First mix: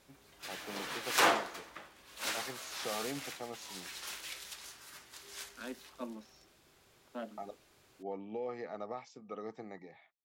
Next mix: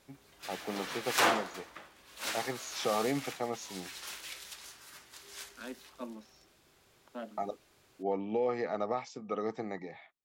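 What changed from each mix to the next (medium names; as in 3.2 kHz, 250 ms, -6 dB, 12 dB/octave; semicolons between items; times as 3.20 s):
first voice +8.5 dB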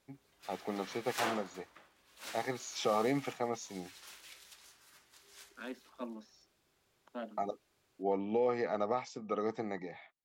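background -9.5 dB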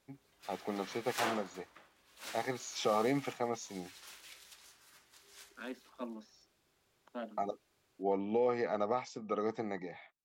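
no change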